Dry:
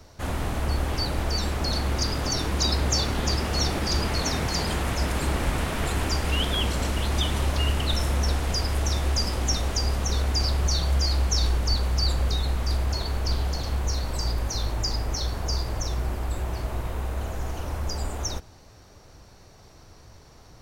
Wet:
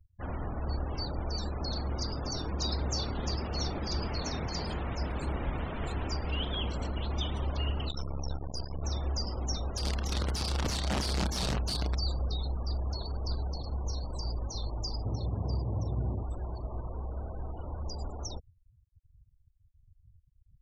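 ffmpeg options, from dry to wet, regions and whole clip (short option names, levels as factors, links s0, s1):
-filter_complex "[0:a]asettb=1/sr,asplit=3[s0][s1][s2];[s0]atrim=end=7.894[s3];[s1]atrim=start=7.89:end=8.84,asetpts=PTS-STARTPTS,afade=t=in:d=0.004:c=qsin,afade=t=out:st=0.946:d=0.004:c=qsin,highshelf=f=11000:g=5.5,aeval=exprs='max(val(0),0)':c=same[s4];[s2]atrim=start=8.836[s5];[s3][s4]acrossfade=d=0.004:c1=hsin:c2=qsin[s6];[s6][s5]acrossfade=d=0.004:c1=qsin:c2=hsin,asettb=1/sr,asplit=3[s7][s8][s9];[s7]atrim=end=9.774[s10];[s8]atrim=start=9.77:end=11.95,asetpts=PTS-STARTPTS,afade=t=in:d=0.004:c=qsin,afade=t=out:st=2.176:d=0.004:c=qsin,aeval=exprs='(mod(7.94*val(0)+1,2)-1)/7.94':c=same,asplit=2[s11][s12];[s12]adelay=31,volume=0.355[s13];[s11][s13]amix=inputs=2:normalize=0,atrim=end_sample=96138[s14];[s9]atrim=start=11.946[s15];[s10][s14]acrossfade=d=0.004:c1=hsin:c2=qsin[s16];[s16][s15]acrossfade=d=0.004:c1=qsin:c2=hsin,asettb=1/sr,asplit=3[s17][s18][s19];[s17]atrim=end=15.054[s20];[s18]atrim=start=15.05:end=16.23,asetpts=PTS-STARTPTS,afade=t=in:d=0.004:c=qsin,afade=t=out:st=1.176:d=0.004:c=qsin,highpass=f=93:w=0.5412,highpass=f=93:w=1.3066,aemphasis=mode=reproduction:type=riaa[s21];[s19]atrim=start=16.226[s22];[s20][s21]acrossfade=d=0.004:c1=hsin:c2=qsin[s23];[s23][s22]acrossfade=d=0.004:c1=qsin:c2=hsin,adynamicequalizer=threshold=0.00794:dfrequency=1800:dqfactor=1.2:tfrequency=1800:tqfactor=1.2:attack=5:release=100:ratio=0.375:range=1.5:mode=cutabove:tftype=bell,afftfilt=real='re*gte(hypot(re,im),0.0251)':imag='im*gte(hypot(re,im),0.0251)':win_size=1024:overlap=0.75,lowpass=6000,volume=0.422"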